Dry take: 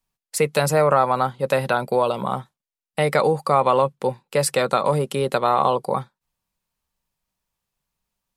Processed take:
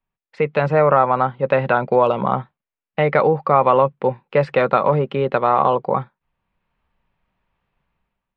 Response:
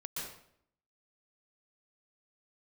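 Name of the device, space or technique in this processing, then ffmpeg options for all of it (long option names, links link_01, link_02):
action camera in a waterproof case: -af "lowpass=frequency=2700:width=0.5412,lowpass=frequency=2700:width=1.3066,dynaudnorm=framelen=110:gausssize=9:maxgain=13dB,volume=-1dB" -ar 48000 -c:a aac -b:a 96k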